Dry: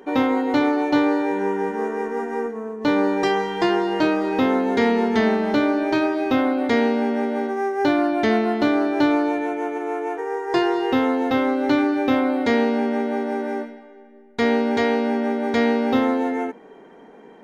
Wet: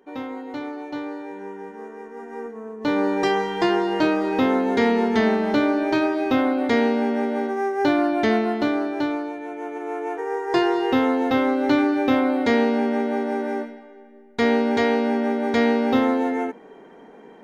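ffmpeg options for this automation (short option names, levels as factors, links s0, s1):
-af "volume=2.99,afade=t=in:st=2.13:d=1.12:silence=0.251189,afade=t=out:st=8.26:d=1.11:silence=0.334965,afade=t=in:st=9.37:d=0.96:silence=0.316228"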